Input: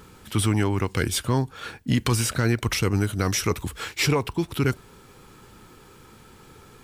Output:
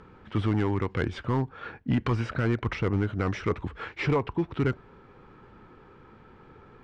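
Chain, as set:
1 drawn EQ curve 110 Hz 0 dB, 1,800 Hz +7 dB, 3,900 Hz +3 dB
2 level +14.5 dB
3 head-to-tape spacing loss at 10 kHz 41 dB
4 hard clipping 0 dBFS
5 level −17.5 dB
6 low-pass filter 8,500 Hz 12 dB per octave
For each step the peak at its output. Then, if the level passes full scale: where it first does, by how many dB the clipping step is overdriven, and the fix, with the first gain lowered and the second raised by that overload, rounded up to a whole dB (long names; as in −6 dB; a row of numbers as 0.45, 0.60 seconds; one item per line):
−6.0, +8.5, +5.5, 0.0, −17.5, −17.5 dBFS
step 2, 5.5 dB
step 2 +8.5 dB, step 5 −11.5 dB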